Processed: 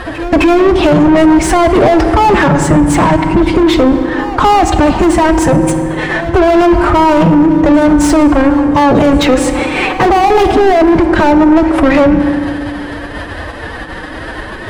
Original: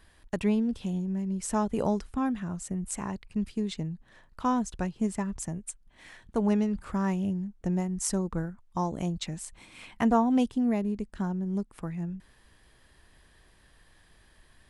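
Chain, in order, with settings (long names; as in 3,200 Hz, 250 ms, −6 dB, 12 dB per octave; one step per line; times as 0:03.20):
spectral tilt −2 dB per octave
phase-vocoder pitch shift with formants kept +8.5 semitones
mid-hump overdrive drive 36 dB, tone 1,100 Hz, clips at −10 dBFS
echo ahead of the sound 260 ms −19 dB
on a send at −8 dB: convolution reverb RT60 2.0 s, pre-delay 3 ms
on the sum: boost into a limiter +16 dB
level −1 dB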